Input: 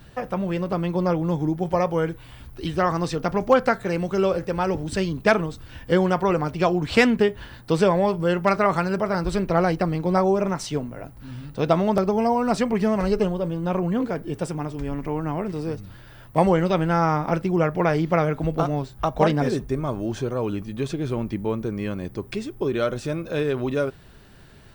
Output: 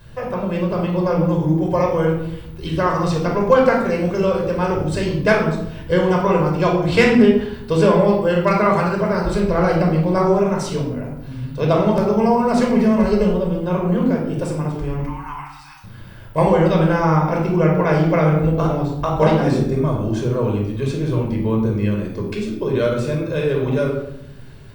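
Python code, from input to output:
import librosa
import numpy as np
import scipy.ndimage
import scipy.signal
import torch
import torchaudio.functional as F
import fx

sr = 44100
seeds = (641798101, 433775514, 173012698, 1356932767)

y = fx.steep_highpass(x, sr, hz=800.0, slope=96, at=(15.0, 15.84))
y = fx.room_shoebox(y, sr, seeds[0], volume_m3=2100.0, walls='furnished', distance_m=5.2)
y = F.gain(torch.from_numpy(y), -1.5).numpy()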